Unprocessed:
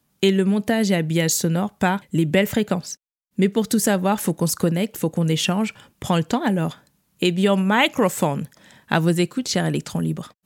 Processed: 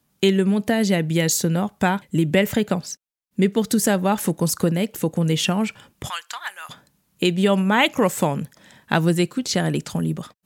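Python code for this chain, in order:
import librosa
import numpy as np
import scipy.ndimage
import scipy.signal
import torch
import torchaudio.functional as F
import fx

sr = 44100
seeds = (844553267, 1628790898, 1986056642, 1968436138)

y = fx.cheby1_highpass(x, sr, hz=1200.0, order=3, at=(6.08, 6.69), fade=0.02)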